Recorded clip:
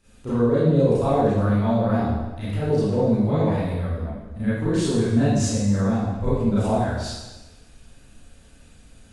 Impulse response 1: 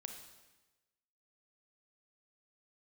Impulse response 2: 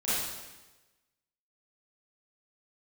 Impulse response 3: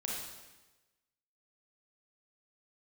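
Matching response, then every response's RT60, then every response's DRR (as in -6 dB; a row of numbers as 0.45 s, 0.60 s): 2; 1.1 s, 1.1 s, 1.1 s; 4.5 dB, -13.0 dB, -3.5 dB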